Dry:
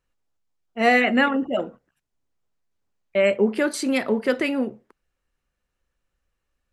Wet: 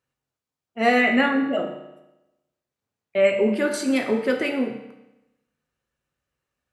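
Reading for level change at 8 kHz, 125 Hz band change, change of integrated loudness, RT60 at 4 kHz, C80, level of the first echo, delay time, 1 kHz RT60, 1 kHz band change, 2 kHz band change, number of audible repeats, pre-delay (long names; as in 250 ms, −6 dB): −1.0 dB, can't be measured, 0.0 dB, 0.90 s, 8.5 dB, no echo audible, no echo audible, 0.95 s, −1.0 dB, −0.5 dB, no echo audible, 6 ms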